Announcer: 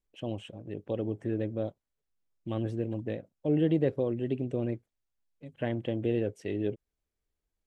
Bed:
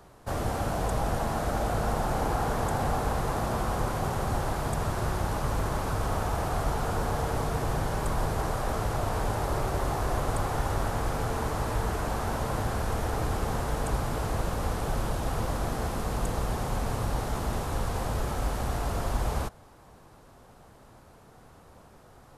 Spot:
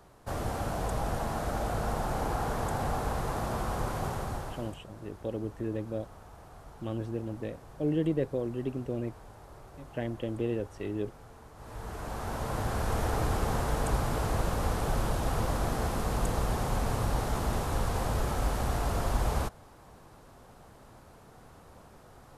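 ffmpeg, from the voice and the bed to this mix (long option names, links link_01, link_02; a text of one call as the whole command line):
ffmpeg -i stem1.wav -i stem2.wav -filter_complex "[0:a]adelay=4350,volume=-2.5dB[link_01];[1:a]volume=18dB,afade=type=out:start_time=4.05:duration=0.76:silence=0.125893,afade=type=in:start_time=11.55:duration=1.46:silence=0.0841395[link_02];[link_01][link_02]amix=inputs=2:normalize=0" out.wav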